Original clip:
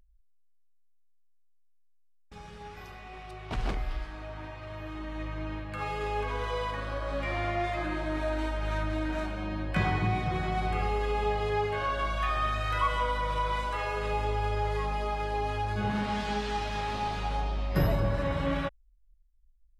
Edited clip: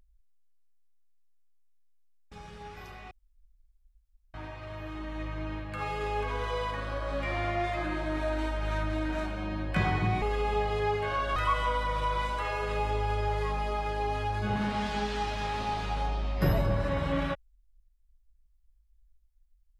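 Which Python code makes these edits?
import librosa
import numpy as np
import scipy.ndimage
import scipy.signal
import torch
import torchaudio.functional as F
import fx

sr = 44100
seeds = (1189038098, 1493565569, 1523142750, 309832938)

y = fx.edit(x, sr, fx.room_tone_fill(start_s=3.11, length_s=1.23),
    fx.cut(start_s=10.22, length_s=0.7),
    fx.cut(start_s=12.06, length_s=0.64), tone=tone)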